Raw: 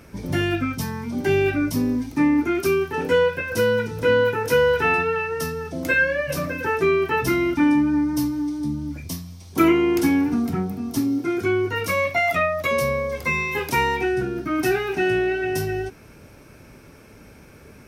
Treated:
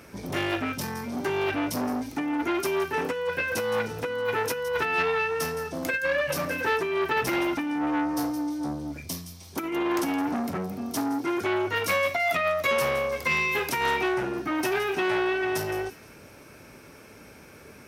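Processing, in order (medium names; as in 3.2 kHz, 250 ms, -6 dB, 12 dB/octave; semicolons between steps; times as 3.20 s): high-pass 43 Hz; bass shelf 220 Hz -9 dB; compressor with a negative ratio -22 dBFS, ratio -0.5; on a send: feedback echo behind a high-pass 167 ms, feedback 31%, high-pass 3.2 kHz, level -12 dB; on the sum: transformer saturation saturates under 1.4 kHz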